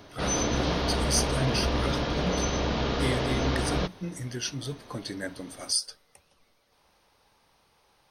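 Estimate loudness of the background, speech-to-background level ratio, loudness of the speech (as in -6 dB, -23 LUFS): -28.0 LUFS, -4.5 dB, -32.5 LUFS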